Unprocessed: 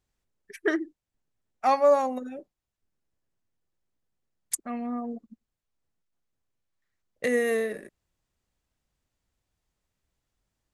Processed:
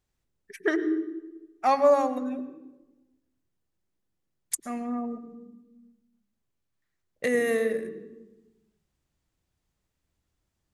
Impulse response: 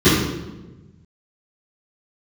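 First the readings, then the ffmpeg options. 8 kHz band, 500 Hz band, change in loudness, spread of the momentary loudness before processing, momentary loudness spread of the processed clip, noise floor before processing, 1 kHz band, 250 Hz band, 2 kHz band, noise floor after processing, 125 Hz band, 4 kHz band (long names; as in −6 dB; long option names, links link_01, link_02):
0.0 dB, +0.5 dB, 0.0 dB, 20 LU, 19 LU, below −85 dBFS, 0.0 dB, +3.0 dB, 0.0 dB, −80 dBFS, can't be measured, 0.0 dB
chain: -filter_complex "[0:a]asplit=2[link_01][link_02];[1:a]atrim=start_sample=2205,adelay=91[link_03];[link_02][link_03]afir=irnorm=-1:irlink=0,volume=-36.5dB[link_04];[link_01][link_04]amix=inputs=2:normalize=0"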